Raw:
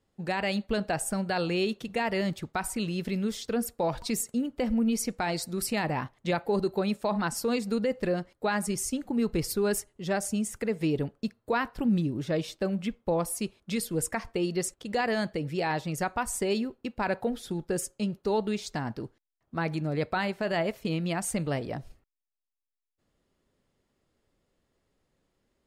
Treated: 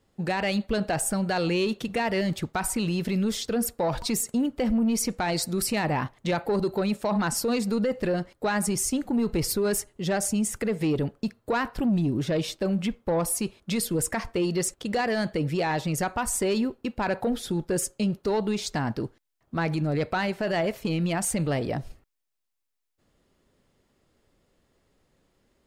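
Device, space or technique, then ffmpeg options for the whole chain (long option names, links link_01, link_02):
soft clipper into limiter: -af "asoftclip=type=tanh:threshold=-21dB,alimiter=level_in=2dB:limit=-24dB:level=0:latency=1:release=31,volume=-2dB,volume=7dB"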